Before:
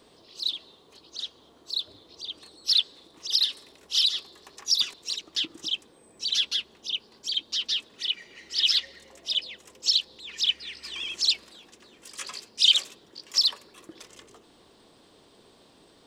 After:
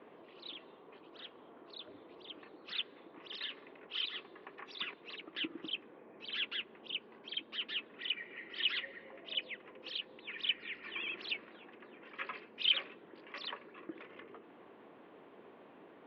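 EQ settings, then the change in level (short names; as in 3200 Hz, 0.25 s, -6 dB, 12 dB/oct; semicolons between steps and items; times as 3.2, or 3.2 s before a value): HPF 210 Hz 12 dB/oct; steep low-pass 2500 Hz 36 dB/oct; dynamic EQ 820 Hz, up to -4 dB, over -59 dBFS, Q 1.3; +2.0 dB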